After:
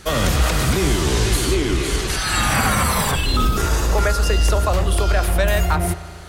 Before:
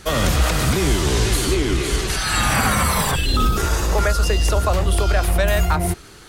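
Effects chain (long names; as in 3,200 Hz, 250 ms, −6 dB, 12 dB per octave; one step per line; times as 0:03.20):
spring reverb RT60 2.4 s, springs 36 ms, chirp 80 ms, DRR 12.5 dB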